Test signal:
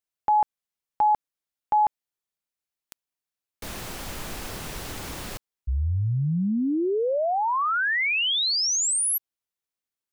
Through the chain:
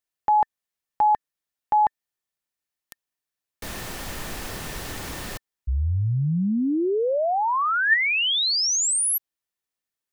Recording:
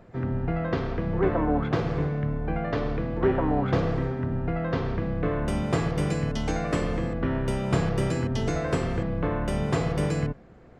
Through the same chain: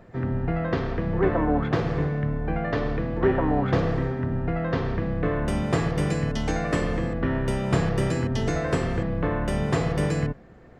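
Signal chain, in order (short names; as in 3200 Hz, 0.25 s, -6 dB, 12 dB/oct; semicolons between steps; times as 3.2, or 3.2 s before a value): small resonant body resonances 1800 Hz, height 9 dB, ringing for 45 ms; gain +1.5 dB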